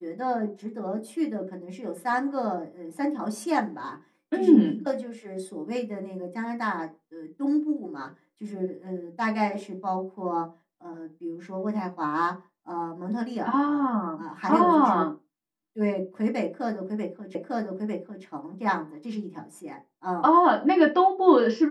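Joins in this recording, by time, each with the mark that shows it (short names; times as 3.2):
17.35 repeat of the last 0.9 s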